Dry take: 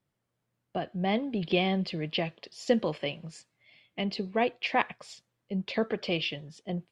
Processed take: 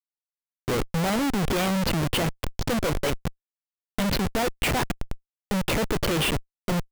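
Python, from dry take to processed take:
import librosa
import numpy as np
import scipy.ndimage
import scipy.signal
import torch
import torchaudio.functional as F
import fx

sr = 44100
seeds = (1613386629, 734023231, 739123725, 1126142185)

y = fx.tape_start_head(x, sr, length_s=1.07)
y = fx.schmitt(y, sr, flips_db=-35.5)
y = y * librosa.db_to_amplitude(8.5)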